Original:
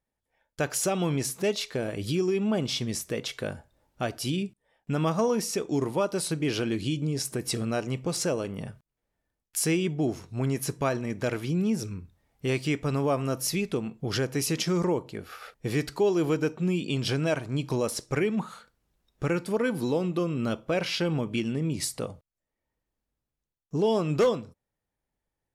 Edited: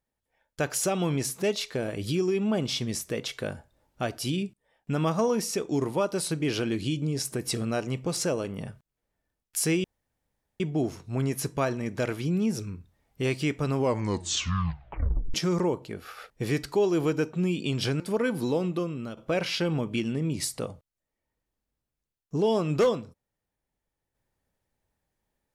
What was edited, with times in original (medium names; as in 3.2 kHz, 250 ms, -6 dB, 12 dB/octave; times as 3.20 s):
9.84 s: insert room tone 0.76 s
12.96 s: tape stop 1.62 s
17.24–19.40 s: delete
20.08–20.57 s: fade out, to -12.5 dB